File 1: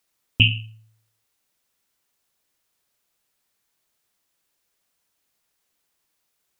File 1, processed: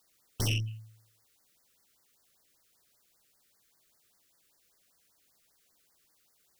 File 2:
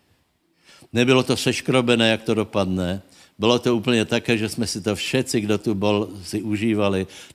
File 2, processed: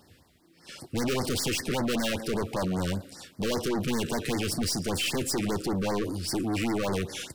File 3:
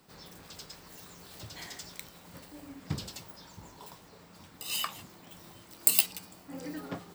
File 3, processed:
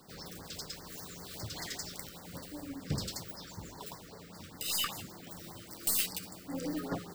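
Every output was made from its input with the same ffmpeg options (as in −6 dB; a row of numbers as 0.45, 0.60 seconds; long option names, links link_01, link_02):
-af "aeval=exprs='(tanh(35.5*val(0)+0.2)-tanh(0.2))/35.5':channel_layout=same,afftfilt=real='re*(1-between(b*sr/1024,770*pow(3100/770,0.5+0.5*sin(2*PI*5.1*pts/sr))/1.41,770*pow(3100/770,0.5+0.5*sin(2*PI*5.1*pts/sr))*1.41))':imag='im*(1-between(b*sr/1024,770*pow(3100/770,0.5+0.5*sin(2*PI*5.1*pts/sr))/1.41,770*pow(3100/770,0.5+0.5*sin(2*PI*5.1*pts/sr))*1.41))':win_size=1024:overlap=0.75,volume=5dB"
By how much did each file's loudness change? −13.5, −8.0, −6.5 LU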